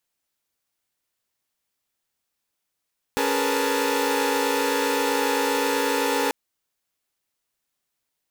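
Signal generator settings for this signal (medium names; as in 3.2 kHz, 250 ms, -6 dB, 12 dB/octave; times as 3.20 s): chord C#4/G#4/A#4/B4/A5 saw, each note -25 dBFS 3.14 s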